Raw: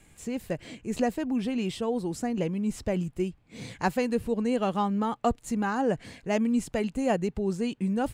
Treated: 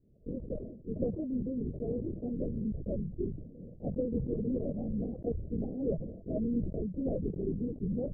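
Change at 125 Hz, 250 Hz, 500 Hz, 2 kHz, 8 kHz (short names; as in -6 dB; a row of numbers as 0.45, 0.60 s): -1.5 dB, -6.0 dB, -7.0 dB, under -40 dB, under -35 dB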